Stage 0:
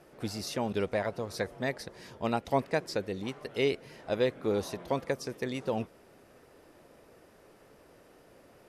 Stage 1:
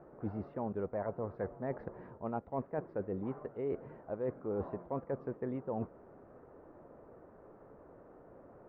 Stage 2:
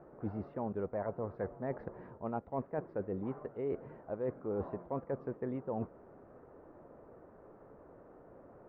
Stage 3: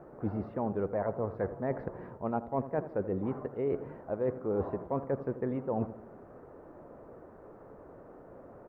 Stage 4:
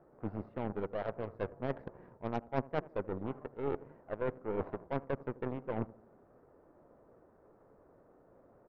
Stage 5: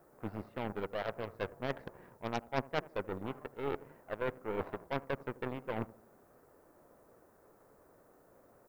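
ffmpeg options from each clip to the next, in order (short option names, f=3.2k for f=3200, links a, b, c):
-af "lowpass=f=1.3k:w=0.5412,lowpass=f=1.3k:w=1.3066,areverse,acompressor=threshold=-36dB:ratio=6,areverse,volume=2dB"
-af anull
-filter_complex "[0:a]asplit=2[a][b];[b]adelay=81,lowpass=f=1.4k:p=1,volume=-13dB,asplit=2[c][d];[d]adelay=81,lowpass=f=1.4k:p=1,volume=0.49,asplit=2[e][f];[f]adelay=81,lowpass=f=1.4k:p=1,volume=0.49,asplit=2[g][h];[h]adelay=81,lowpass=f=1.4k:p=1,volume=0.49,asplit=2[i][j];[j]adelay=81,lowpass=f=1.4k:p=1,volume=0.49[k];[a][c][e][g][i][k]amix=inputs=6:normalize=0,volume=5dB"
-af "aeval=exprs='0.112*(cos(1*acos(clip(val(0)/0.112,-1,1)))-cos(1*PI/2))+0.0355*(cos(2*acos(clip(val(0)/0.112,-1,1)))-cos(2*PI/2))+0.02*(cos(3*acos(clip(val(0)/0.112,-1,1)))-cos(3*PI/2))+0.000891*(cos(5*acos(clip(val(0)/0.112,-1,1)))-cos(5*PI/2))+0.00398*(cos(7*acos(clip(val(0)/0.112,-1,1)))-cos(7*PI/2))':c=same"
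-af "crystalizer=i=8.5:c=0,volume=-2.5dB"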